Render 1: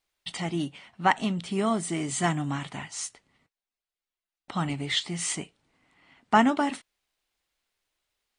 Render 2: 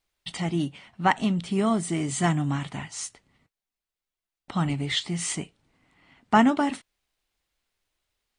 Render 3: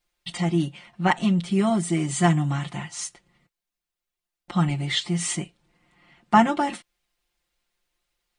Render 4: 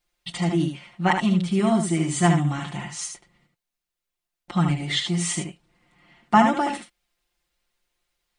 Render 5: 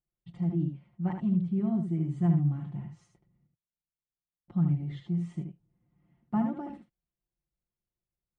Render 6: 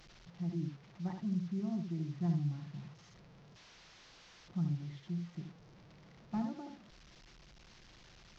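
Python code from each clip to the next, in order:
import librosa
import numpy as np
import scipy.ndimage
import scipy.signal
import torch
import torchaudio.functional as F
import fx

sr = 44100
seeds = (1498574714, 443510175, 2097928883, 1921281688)

y1 = fx.low_shelf(x, sr, hz=210.0, db=7.5)
y2 = y1 + 0.95 * np.pad(y1, (int(5.7 * sr / 1000.0), 0))[:len(y1)]
y2 = y2 * librosa.db_to_amplitude(-1.0)
y3 = y2 + 10.0 ** (-6.0 / 20.0) * np.pad(y2, (int(75 * sr / 1000.0), 0))[:len(y2)]
y4 = fx.bandpass_q(y3, sr, hz=100.0, q=1.2)
y5 = fx.delta_mod(y4, sr, bps=32000, step_db=-44.0)
y5 = y5 * librosa.db_to_amplitude(-8.5)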